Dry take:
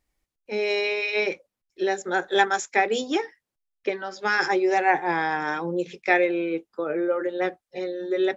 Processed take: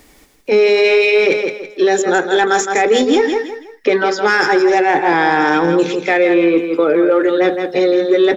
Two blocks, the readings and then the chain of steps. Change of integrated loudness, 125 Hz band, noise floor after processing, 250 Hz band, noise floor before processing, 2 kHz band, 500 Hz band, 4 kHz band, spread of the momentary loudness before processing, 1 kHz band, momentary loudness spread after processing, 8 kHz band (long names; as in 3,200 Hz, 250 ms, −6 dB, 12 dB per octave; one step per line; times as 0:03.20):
+11.0 dB, +11.5 dB, −48 dBFS, +13.5 dB, below −85 dBFS, +9.0 dB, +13.0 dB, +10.0 dB, 9 LU, +9.0 dB, 6 LU, can't be measured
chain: reversed playback
downward compressor 5 to 1, threshold −30 dBFS, peak gain reduction 14.5 dB
reversed playback
hollow resonant body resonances 280/430/3,500 Hz, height 7 dB
in parallel at −5 dB: soft clipping −29 dBFS, distortion −12 dB
on the sum: repeating echo 164 ms, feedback 26%, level −8.5 dB
boost into a limiter +19 dB
multiband upward and downward compressor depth 40%
level −3.5 dB